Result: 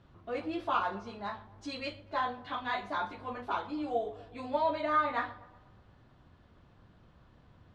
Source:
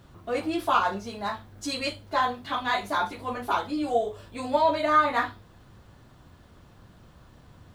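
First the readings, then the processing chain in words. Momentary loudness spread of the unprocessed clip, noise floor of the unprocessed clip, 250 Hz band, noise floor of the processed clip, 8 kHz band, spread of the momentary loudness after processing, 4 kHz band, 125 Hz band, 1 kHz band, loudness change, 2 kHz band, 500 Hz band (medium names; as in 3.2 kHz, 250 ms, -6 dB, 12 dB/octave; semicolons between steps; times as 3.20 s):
12 LU, -54 dBFS, -7.5 dB, -62 dBFS, under -15 dB, 12 LU, -10.0 dB, -7.5 dB, -7.5 dB, -7.5 dB, -7.5 dB, -7.5 dB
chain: low-pass 3.9 kHz 12 dB/octave; on a send: tape echo 121 ms, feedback 59%, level -16 dB, low-pass 1.6 kHz; on the sum: trim -7.5 dB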